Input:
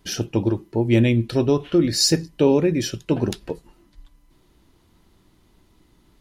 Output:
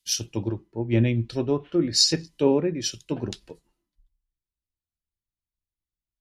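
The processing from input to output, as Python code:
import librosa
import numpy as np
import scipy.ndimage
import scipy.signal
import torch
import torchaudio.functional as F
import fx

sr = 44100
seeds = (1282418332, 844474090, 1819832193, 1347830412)

y = fx.env_lowpass_down(x, sr, base_hz=3000.0, full_db=-13.5)
y = fx.high_shelf(y, sr, hz=3800.0, db=7.0)
y = fx.band_widen(y, sr, depth_pct=100)
y = F.gain(torch.from_numpy(y), -8.0).numpy()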